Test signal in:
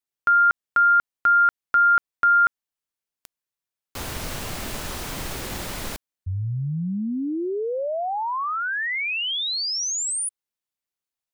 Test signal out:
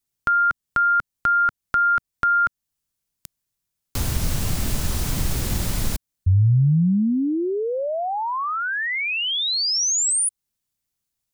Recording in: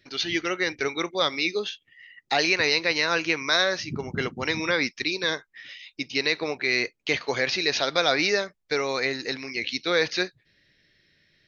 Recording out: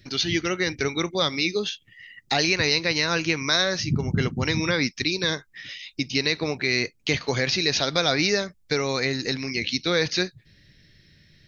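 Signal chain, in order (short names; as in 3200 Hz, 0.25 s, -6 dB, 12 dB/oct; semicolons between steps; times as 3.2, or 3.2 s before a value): tone controls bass +14 dB, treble +7 dB; in parallel at +2.5 dB: compressor, threshold -28 dBFS; on the sum: gain -4.5 dB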